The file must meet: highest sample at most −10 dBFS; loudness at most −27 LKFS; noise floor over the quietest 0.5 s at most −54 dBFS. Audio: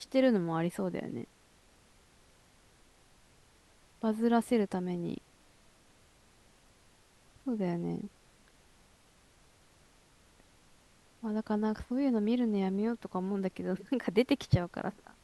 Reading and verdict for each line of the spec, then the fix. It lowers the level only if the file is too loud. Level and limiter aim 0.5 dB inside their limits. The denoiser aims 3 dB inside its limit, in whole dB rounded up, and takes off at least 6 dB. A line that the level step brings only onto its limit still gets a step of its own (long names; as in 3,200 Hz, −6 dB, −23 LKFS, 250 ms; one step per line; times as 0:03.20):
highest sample −14.0 dBFS: in spec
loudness −32.5 LKFS: in spec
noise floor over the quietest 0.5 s −63 dBFS: in spec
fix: no processing needed